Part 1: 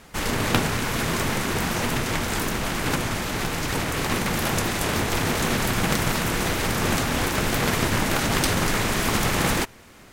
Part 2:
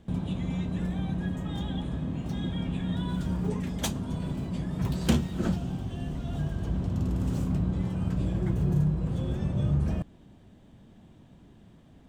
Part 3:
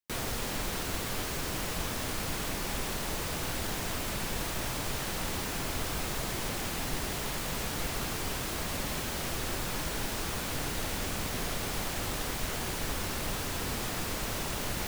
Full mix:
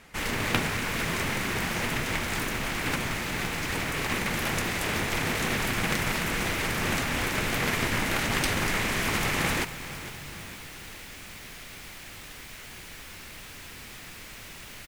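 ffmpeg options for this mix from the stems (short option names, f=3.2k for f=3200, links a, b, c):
-filter_complex "[0:a]volume=-6.5dB,asplit=2[a][b];[b]volume=-14.5dB[c];[1:a]acompressor=threshold=-28dB:ratio=6,adelay=500,volume=-15.5dB[d];[2:a]acrossover=split=350|1300[e][f][g];[e]acompressor=threshold=-42dB:ratio=4[h];[f]acompressor=threshold=-52dB:ratio=4[i];[g]acompressor=threshold=-39dB:ratio=4[j];[h][i][j]amix=inputs=3:normalize=0,adelay=100,volume=-5.5dB[k];[c]aecho=0:1:458|916|1374|1832|2290|2748|3206|3664:1|0.55|0.303|0.166|0.0915|0.0503|0.0277|0.0152[l];[a][d][k][l]amix=inputs=4:normalize=0,equalizer=f=2.2k:t=o:w=0.97:g=6.5"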